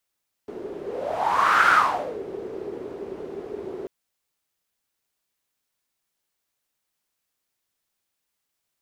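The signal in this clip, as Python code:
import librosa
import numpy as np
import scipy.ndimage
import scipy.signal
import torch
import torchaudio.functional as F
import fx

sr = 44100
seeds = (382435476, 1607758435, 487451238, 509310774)

y = fx.whoosh(sr, seeds[0], length_s=3.39, peak_s=1.2, rise_s=0.98, fall_s=0.56, ends_hz=400.0, peak_hz=1400.0, q=6.8, swell_db=17.0)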